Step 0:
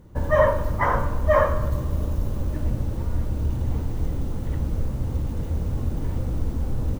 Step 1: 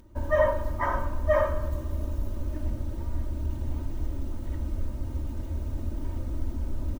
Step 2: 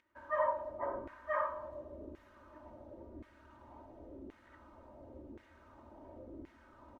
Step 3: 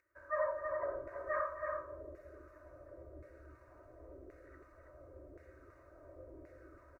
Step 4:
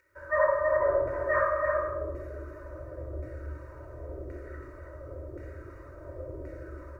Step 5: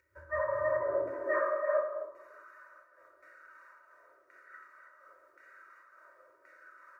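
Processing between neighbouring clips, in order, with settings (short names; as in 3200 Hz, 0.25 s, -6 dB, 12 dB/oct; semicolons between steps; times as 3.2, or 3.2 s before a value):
upward compressor, threshold -43 dBFS; comb 3.2 ms, depth 92%; gain -9 dB
LFO band-pass saw down 0.93 Hz 360–2100 Hz; gain -2 dB
fixed phaser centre 870 Hz, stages 6; on a send: tapped delay 0.258/0.326 s -14/-5 dB
shoebox room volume 4000 m³, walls furnished, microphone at 4.6 m; gain +8 dB
high-pass sweep 76 Hz -> 1400 Hz, 0.3–2.53; noise-modulated level, depth 65%; gain -4 dB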